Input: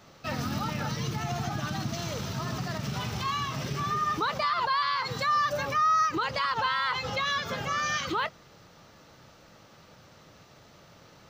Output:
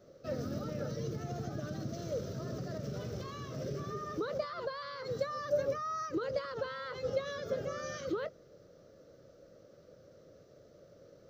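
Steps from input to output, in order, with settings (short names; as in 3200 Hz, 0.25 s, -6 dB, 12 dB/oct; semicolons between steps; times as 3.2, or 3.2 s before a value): EQ curve 220 Hz 0 dB, 560 Hz +12 dB, 870 Hz -16 dB, 1400 Hz -5 dB, 2600 Hz -14 dB, 5800 Hz -4 dB, 9000 Hz -13 dB, 14000 Hz -7 dB; gain -7 dB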